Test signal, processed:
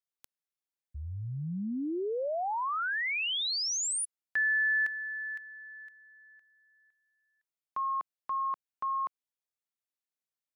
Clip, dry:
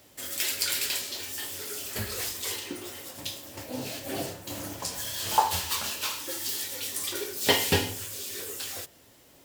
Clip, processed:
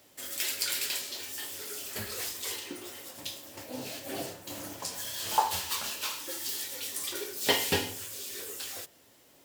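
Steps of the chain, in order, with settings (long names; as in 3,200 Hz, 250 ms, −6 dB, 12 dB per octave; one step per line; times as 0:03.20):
low-shelf EQ 110 Hz −10 dB
level −3 dB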